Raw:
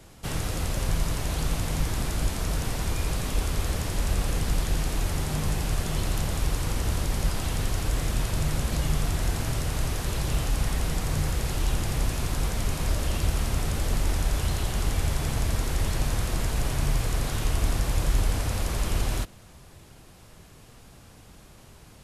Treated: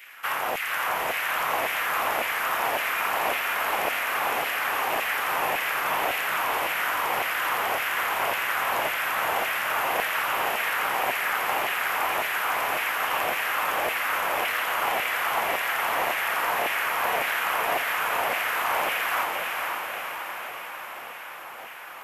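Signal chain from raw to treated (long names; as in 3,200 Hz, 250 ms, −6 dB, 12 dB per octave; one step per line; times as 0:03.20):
flat-topped bell 6,000 Hz −15 dB
in parallel at 0 dB: downward compressor, threshold −34 dBFS, peak gain reduction 15 dB
on the sum: auto-filter high-pass saw down 1.8 Hz 650–2,300 Hz
amplitude modulation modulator 260 Hz, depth 50%
on a send: feedback delay with all-pass diffusion 495 ms, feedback 65%, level −3 dB
on the sum: level +8 dB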